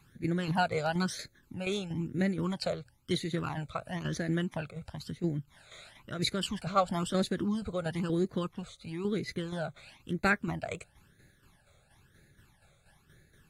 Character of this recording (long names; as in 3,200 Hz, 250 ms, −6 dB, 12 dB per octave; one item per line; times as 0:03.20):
tremolo saw down 4.2 Hz, depth 60%
phaser sweep stages 12, 1 Hz, lowest notch 290–1,000 Hz
AAC